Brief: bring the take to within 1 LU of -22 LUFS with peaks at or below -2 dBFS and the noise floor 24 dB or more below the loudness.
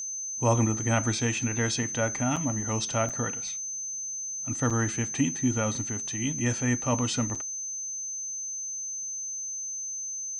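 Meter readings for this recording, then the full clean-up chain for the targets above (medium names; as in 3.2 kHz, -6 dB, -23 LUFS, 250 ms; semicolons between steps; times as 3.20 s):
dropouts 4; longest dropout 5.7 ms; steady tone 6.2 kHz; tone level -32 dBFS; loudness -28.5 LUFS; peak level -10.5 dBFS; loudness target -22.0 LUFS
-> interpolate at 2.36/3.09/4.70/7.35 s, 5.7 ms; band-stop 6.2 kHz, Q 30; trim +6.5 dB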